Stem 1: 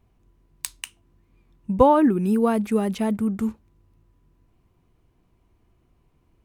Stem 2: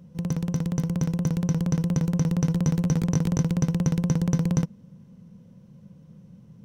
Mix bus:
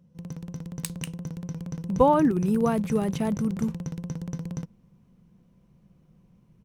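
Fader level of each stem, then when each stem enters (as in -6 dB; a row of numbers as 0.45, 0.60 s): -3.5, -10.5 dB; 0.20, 0.00 s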